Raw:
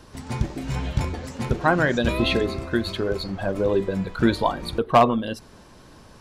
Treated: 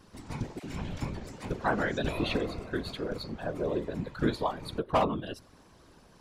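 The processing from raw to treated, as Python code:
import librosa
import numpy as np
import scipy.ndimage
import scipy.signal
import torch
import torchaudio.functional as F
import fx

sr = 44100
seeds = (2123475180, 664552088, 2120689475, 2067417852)

y = fx.dispersion(x, sr, late='lows', ms=54.0, hz=710.0, at=(0.59, 1.46))
y = fx.whisperise(y, sr, seeds[0])
y = y * 10.0 ** (-9.0 / 20.0)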